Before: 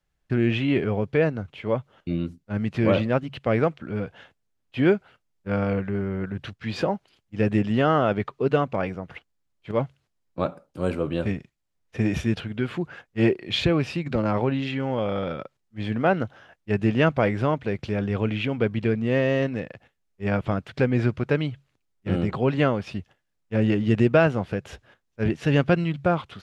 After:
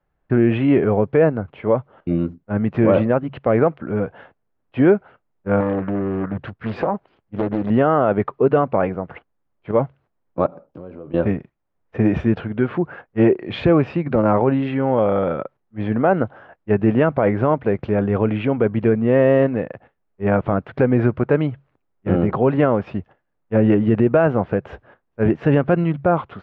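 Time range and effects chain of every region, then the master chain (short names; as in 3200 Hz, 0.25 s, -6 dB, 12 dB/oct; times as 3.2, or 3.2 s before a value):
5.6–7.7 compressor, threshold -23 dBFS + Doppler distortion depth 0.73 ms
10.46–11.14 bell 1300 Hz -5 dB 1.9 oct + compressor 12:1, threshold -39 dBFS
whole clip: LPF 1200 Hz 12 dB/oct; low shelf 240 Hz -8 dB; maximiser +15.5 dB; gain -4.5 dB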